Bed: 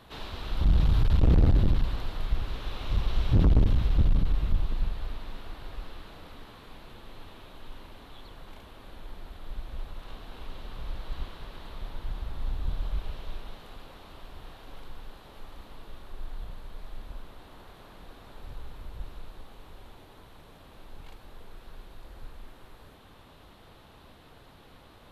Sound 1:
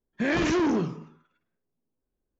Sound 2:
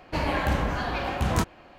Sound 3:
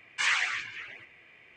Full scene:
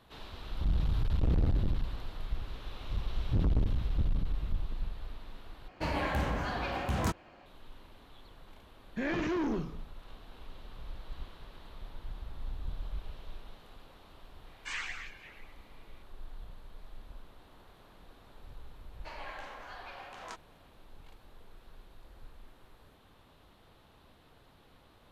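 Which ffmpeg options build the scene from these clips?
-filter_complex "[2:a]asplit=2[a][b];[0:a]volume=-7.5dB[c];[a]asoftclip=type=tanh:threshold=-15dB[d];[1:a]acrossover=split=3500[e][f];[f]acompressor=threshold=-48dB:ratio=4:attack=1:release=60[g];[e][g]amix=inputs=2:normalize=0[h];[b]highpass=640,lowpass=6.7k[i];[c]asplit=2[j][k];[j]atrim=end=5.684[l];[d]atrim=end=1.78,asetpts=PTS-STARTPTS,volume=-5.5dB[m];[k]atrim=start=7.456[n];[h]atrim=end=2.39,asetpts=PTS-STARTPTS,volume=-8dB,afade=t=in:d=0.004:c=hsin,afade=t=out:st=2.386:d=0.004:c=hsin,adelay=8770[o];[3:a]atrim=end=1.56,asetpts=PTS-STARTPTS,volume=-12dB,afade=t=in:d=0.004:c=hsin,afade=t=out:st=1.556:d=0.004:c=hsin,adelay=14470[p];[i]atrim=end=1.78,asetpts=PTS-STARTPTS,volume=-15dB,afade=t=in:d=0.004:c=hsin,afade=t=out:st=1.776:d=0.004:c=hsin,adelay=834372S[q];[l][m]acrossfade=d=0.004:c1=hsin:c2=hsin[r];[r][n]acrossfade=d=0.004:c1=hsin:c2=hsin[s];[s][o][p][q]amix=inputs=4:normalize=0"

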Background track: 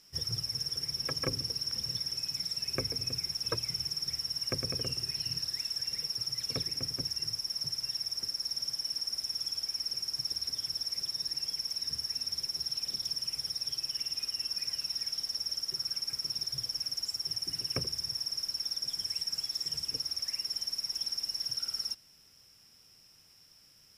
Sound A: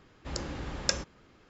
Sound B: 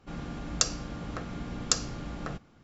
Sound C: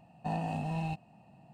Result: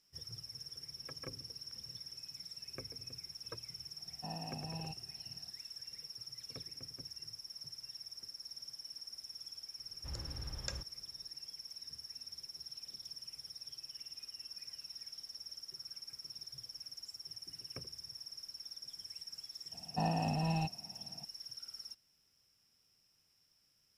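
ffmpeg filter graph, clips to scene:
-filter_complex "[3:a]asplit=2[a][b];[0:a]volume=-13.5dB[c];[1:a]lowshelf=f=160:t=q:w=1.5:g=8.5[d];[a]atrim=end=1.53,asetpts=PTS-STARTPTS,volume=-11dB,afade=t=in:d=0.004:c=hsin,afade=t=out:st=1.526:d=0.004:c=hsin,adelay=3980[e];[d]atrim=end=1.49,asetpts=PTS-STARTPTS,volume=-14dB,afade=t=in:d=0.004:c=hsin,afade=t=out:st=1.486:d=0.004:c=hsin,adelay=9790[f];[b]atrim=end=1.53,asetpts=PTS-STARTPTS,afade=t=in:d=0.004:c=hsin,afade=t=out:st=1.526:d=0.004:c=hsin,adelay=869652S[g];[c][e][f][g]amix=inputs=4:normalize=0"

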